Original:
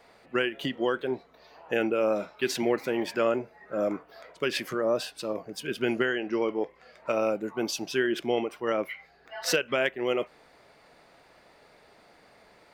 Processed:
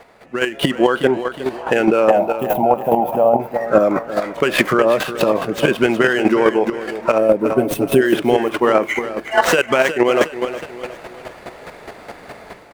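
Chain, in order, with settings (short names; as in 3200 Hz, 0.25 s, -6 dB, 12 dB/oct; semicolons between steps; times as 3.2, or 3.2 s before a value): median filter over 9 samples; compressor 6:1, threshold -32 dBFS, peak gain reduction 11.5 dB; 7.45–8.01 comb 7.3 ms, depth 96%; AGC gain up to 11.5 dB; 2.1–3.4 EQ curve 190 Hz 0 dB, 370 Hz -10 dB, 770 Hz +11 dB, 1600 Hz -28 dB, 3100 Hz -17 dB, 4600 Hz -22 dB, 8400 Hz -16 dB, 13000 Hz +7 dB; 7.18–8.02 spectral gain 730–8000 Hz -12 dB; feedback echo 0.363 s, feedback 45%, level -10.5 dB; chopper 4.8 Hz, depth 60%, duty 15%; dynamic EQ 1000 Hz, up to +5 dB, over -42 dBFS, Q 1.2; maximiser +16 dB; gain -1 dB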